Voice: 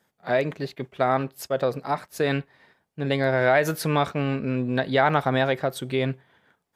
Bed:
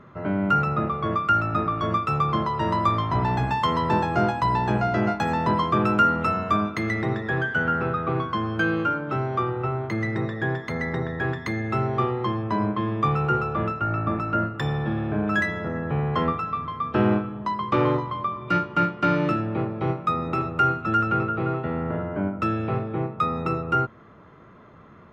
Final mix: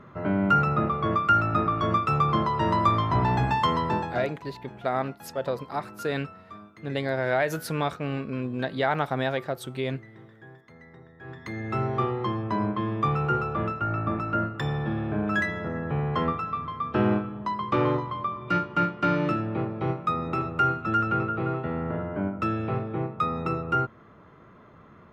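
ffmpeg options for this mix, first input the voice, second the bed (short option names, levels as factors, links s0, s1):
-filter_complex "[0:a]adelay=3850,volume=0.562[s0];[1:a]volume=10,afade=t=out:st=3.61:d=0.73:silence=0.0749894,afade=t=in:st=11.19:d=0.63:silence=0.1[s1];[s0][s1]amix=inputs=2:normalize=0"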